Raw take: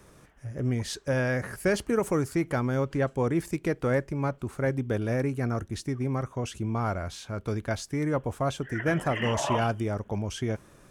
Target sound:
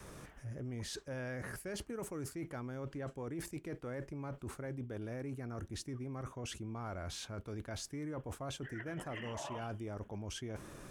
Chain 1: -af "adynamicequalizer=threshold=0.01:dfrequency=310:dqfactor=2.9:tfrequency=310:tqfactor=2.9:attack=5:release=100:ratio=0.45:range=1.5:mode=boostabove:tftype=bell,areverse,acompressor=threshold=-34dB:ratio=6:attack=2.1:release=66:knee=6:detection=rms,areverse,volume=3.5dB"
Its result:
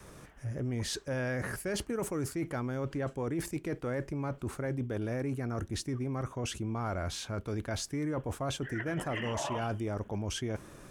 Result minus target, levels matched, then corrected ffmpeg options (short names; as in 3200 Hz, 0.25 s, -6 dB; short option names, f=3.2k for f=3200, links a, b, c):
compressor: peak gain reduction -8.5 dB
-af "adynamicequalizer=threshold=0.01:dfrequency=310:dqfactor=2.9:tfrequency=310:tqfactor=2.9:attack=5:release=100:ratio=0.45:range=1.5:mode=boostabove:tftype=bell,areverse,acompressor=threshold=-44dB:ratio=6:attack=2.1:release=66:knee=6:detection=rms,areverse,volume=3.5dB"